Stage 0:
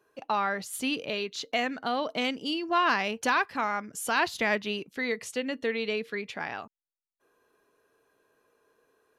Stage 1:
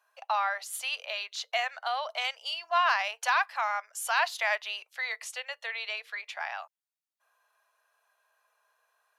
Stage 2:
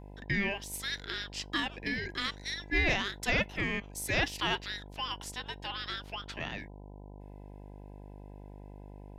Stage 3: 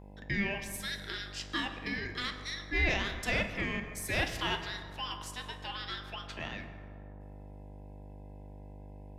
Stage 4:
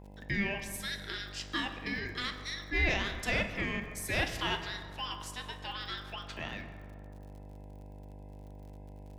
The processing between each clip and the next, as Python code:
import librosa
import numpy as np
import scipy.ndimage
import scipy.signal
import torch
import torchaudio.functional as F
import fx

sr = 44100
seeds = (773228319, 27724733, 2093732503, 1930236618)

y1 = scipy.signal.sosfilt(scipy.signal.butter(8, 630.0, 'highpass', fs=sr, output='sos'), x)
y2 = y1 * np.sin(2.0 * np.pi * 1000.0 * np.arange(len(y1)) / sr)
y2 = fx.dmg_buzz(y2, sr, base_hz=50.0, harmonics=20, level_db=-48.0, tilt_db=-5, odd_only=False)
y3 = fx.rev_fdn(y2, sr, rt60_s=2.1, lf_ratio=1.05, hf_ratio=0.5, size_ms=88.0, drr_db=5.5)
y3 = y3 * 10.0 ** (-2.5 / 20.0)
y4 = fx.dmg_crackle(y3, sr, seeds[0], per_s=66.0, level_db=-49.0)